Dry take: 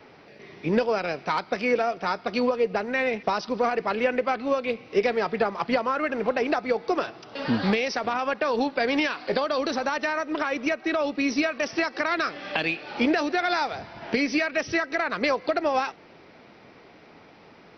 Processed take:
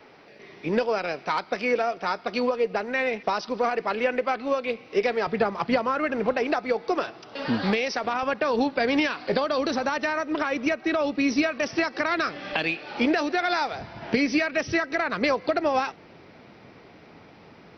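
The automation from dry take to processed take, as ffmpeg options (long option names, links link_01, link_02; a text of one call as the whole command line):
ffmpeg -i in.wav -af "asetnsamples=nb_out_samples=441:pad=0,asendcmd='5.27 equalizer g 5;6.33 equalizer g -2.5;8.23 equalizer g 6;12.53 equalizer g -0.5;13.81 equalizer g 6',equalizer=frequency=100:width_type=o:width=2.3:gain=-5.5" out.wav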